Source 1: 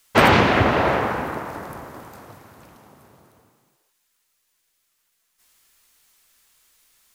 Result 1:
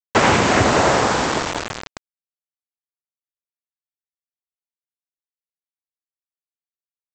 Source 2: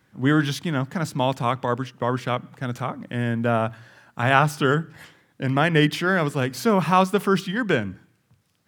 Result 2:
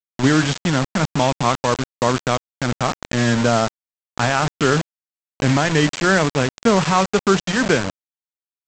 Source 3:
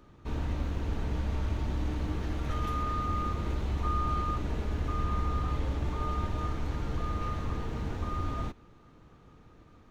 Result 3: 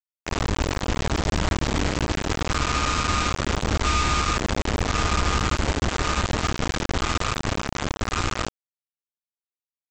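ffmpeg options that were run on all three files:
-af "lowpass=f=3400:p=1,lowshelf=f=120:g=-3,alimiter=limit=0.237:level=0:latency=1:release=446,aresample=16000,acrusher=bits=4:mix=0:aa=0.000001,aresample=44100,volume=2.37"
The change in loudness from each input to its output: +2.0 LU, +4.0 LU, +8.5 LU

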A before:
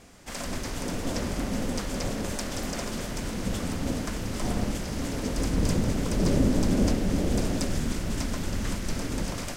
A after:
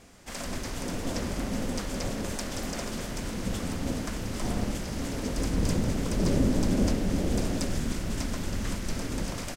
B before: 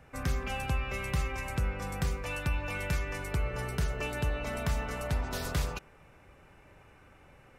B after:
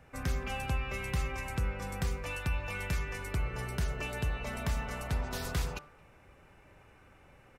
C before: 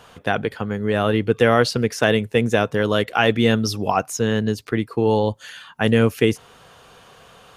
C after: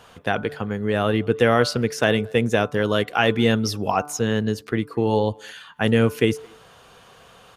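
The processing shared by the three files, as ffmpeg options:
-filter_complex "[0:a]bandreject=f=147.2:t=h:w=4,bandreject=f=294.4:t=h:w=4,bandreject=f=441.6:t=h:w=4,bandreject=f=588.8:t=h:w=4,bandreject=f=736:t=h:w=4,bandreject=f=883.2:t=h:w=4,bandreject=f=1030.4:t=h:w=4,bandreject=f=1177.6:t=h:w=4,bandreject=f=1324.8:t=h:w=4,bandreject=f=1472:t=h:w=4,asplit=2[s0][s1];[s1]adelay=220,highpass=300,lowpass=3400,asoftclip=type=hard:threshold=0.266,volume=0.0447[s2];[s0][s2]amix=inputs=2:normalize=0,volume=0.841"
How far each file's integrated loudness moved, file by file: -1.5 LU, -2.0 LU, -1.5 LU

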